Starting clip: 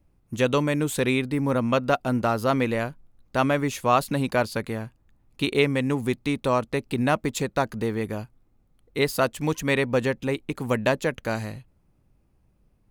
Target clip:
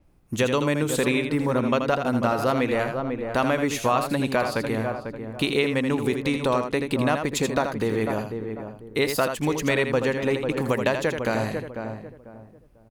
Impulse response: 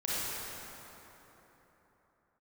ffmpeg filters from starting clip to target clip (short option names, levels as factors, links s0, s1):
-filter_complex "[0:a]bass=f=250:g=-4,treble=f=4000:g=0,asplit=2[s0][s1];[s1]adelay=495,lowpass=f=1000:p=1,volume=0.335,asplit=2[s2][s3];[s3]adelay=495,lowpass=f=1000:p=1,volume=0.29,asplit=2[s4][s5];[s5]adelay=495,lowpass=f=1000:p=1,volume=0.29[s6];[s2][s4][s6]amix=inputs=3:normalize=0[s7];[s0][s7]amix=inputs=2:normalize=0,acompressor=threshold=0.0398:ratio=2.5,asplit=2[s8][s9];[s9]aecho=0:1:81:0.447[s10];[s8][s10]amix=inputs=2:normalize=0,adynamicequalizer=threshold=0.00282:dfrequency=7800:dqfactor=0.7:tfrequency=7800:tqfactor=0.7:attack=5:release=100:ratio=0.375:range=2:mode=cutabove:tftype=highshelf,volume=2"